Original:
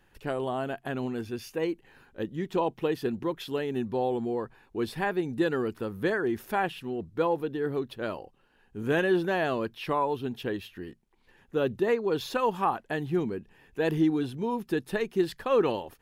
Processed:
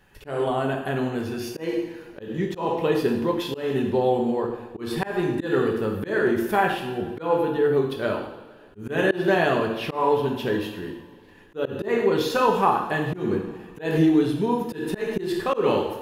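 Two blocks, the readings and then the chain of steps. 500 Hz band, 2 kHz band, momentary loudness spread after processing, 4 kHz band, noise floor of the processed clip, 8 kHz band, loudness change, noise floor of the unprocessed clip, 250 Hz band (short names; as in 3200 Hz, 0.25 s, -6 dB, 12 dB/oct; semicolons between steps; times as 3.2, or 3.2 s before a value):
+5.5 dB, +5.5 dB, 11 LU, +6.0 dB, -48 dBFS, n/a, +5.5 dB, -65 dBFS, +5.5 dB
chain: two-slope reverb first 0.82 s, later 2.9 s, from -18 dB, DRR 0.5 dB; auto swell 0.175 s; gain +4.5 dB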